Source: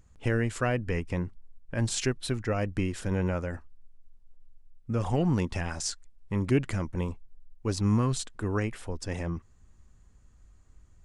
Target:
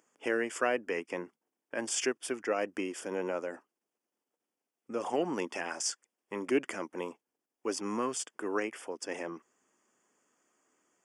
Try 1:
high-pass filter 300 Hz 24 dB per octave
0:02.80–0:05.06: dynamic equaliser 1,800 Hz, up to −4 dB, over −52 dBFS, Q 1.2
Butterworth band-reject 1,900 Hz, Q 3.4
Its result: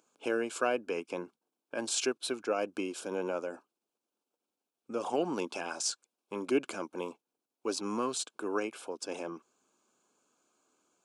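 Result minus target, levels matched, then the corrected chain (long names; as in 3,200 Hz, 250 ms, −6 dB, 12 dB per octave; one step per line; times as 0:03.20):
2,000 Hz band −3.0 dB
high-pass filter 300 Hz 24 dB per octave
0:02.80–0:05.06: dynamic equaliser 1,800 Hz, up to −4 dB, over −52 dBFS, Q 1.2
Butterworth band-reject 4,000 Hz, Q 3.4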